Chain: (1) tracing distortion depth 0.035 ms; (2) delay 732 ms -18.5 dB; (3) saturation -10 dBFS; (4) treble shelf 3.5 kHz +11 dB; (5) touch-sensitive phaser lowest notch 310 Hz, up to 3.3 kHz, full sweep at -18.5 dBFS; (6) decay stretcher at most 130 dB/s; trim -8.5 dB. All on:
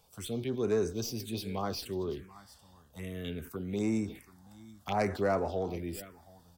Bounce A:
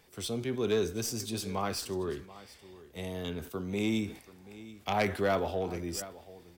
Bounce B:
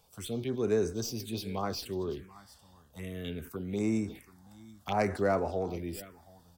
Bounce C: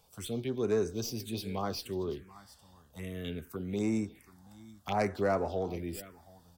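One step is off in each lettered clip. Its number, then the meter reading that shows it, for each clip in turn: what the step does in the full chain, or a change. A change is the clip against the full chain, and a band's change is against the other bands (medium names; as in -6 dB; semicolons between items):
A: 5, 8 kHz band +5.0 dB; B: 3, distortion -22 dB; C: 6, momentary loudness spread change -3 LU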